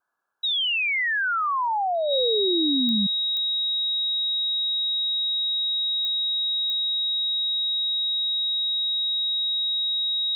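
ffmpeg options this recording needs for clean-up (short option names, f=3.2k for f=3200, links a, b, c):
-af "adeclick=t=4,bandreject=f=3.8k:w=30,afftdn=nr=30:nf=-25"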